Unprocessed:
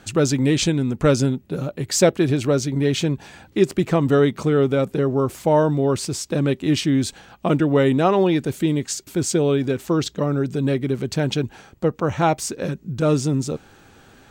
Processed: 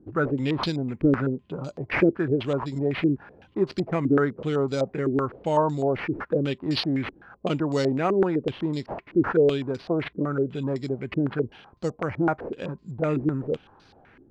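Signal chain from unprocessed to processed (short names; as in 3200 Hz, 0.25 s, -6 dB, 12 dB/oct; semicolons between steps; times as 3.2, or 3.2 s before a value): sample-and-hold 6×; stepped low-pass 7.9 Hz 330–4500 Hz; gain -8 dB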